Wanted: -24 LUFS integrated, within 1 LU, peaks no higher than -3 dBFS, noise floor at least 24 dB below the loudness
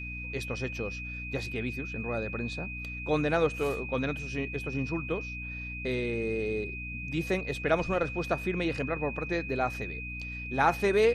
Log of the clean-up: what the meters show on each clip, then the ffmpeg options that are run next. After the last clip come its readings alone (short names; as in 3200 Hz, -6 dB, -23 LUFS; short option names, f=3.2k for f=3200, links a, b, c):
hum 60 Hz; harmonics up to 300 Hz; hum level -38 dBFS; steady tone 2500 Hz; tone level -38 dBFS; loudness -31.5 LUFS; peak -10.5 dBFS; loudness target -24.0 LUFS
-> -af "bandreject=f=60:t=h:w=6,bandreject=f=120:t=h:w=6,bandreject=f=180:t=h:w=6,bandreject=f=240:t=h:w=6,bandreject=f=300:t=h:w=6"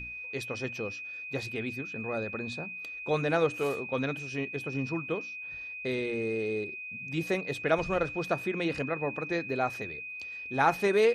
hum none; steady tone 2500 Hz; tone level -38 dBFS
-> -af "bandreject=f=2.5k:w=30"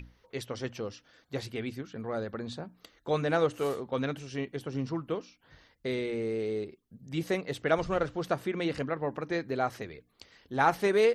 steady tone none; loudness -32.5 LUFS; peak -10.5 dBFS; loudness target -24.0 LUFS
-> -af "volume=8.5dB,alimiter=limit=-3dB:level=0:latency=1"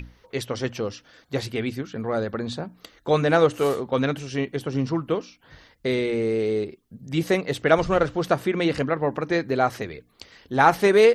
loudness -24.0 LUFS; peak -3.0 dBFS; noise floor -62 dBFS